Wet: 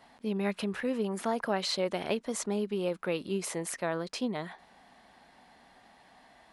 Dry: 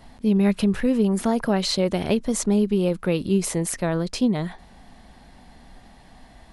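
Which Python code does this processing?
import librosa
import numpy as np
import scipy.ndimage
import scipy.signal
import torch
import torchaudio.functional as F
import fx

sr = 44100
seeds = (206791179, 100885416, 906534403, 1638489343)

y = fx.highpass(x, sr, hz=1000.0, slope=6)
y = fx.high_shelf(y, sr, hz=2900.0, db=-10.0)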